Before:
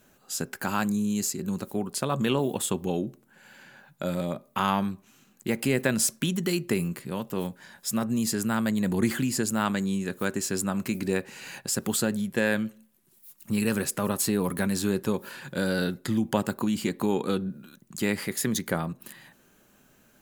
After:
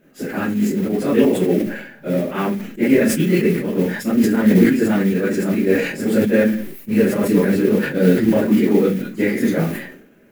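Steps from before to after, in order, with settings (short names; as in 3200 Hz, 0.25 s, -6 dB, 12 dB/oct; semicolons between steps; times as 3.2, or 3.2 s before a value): tilt shelf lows +4 dB, about 1200 Hz; Schroeder reverb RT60 0.47 s, DRR -7 dB; plain phase-vocoder stretch 0.51×; modulation noise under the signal 17 dB; graphic EQ 125/250/500/1000/2000/4000/8000 Hz -5/+9/+8/-7/+11/-3/-7 dB; sustainer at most 74 dB/s; gain -3 dB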